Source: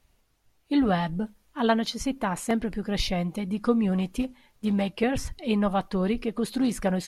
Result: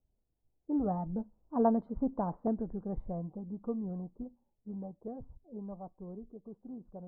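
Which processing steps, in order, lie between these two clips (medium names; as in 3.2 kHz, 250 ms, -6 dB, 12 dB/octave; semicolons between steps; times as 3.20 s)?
Doppler pass-by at 1.82 s, 11 m/s, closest 7 m; inverse Chebyshev low-pass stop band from 2.4 kHz, stop band 50 dB; level-controlled noise filter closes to 590 Hz, open at -23.5 dBFS; trim -3 dB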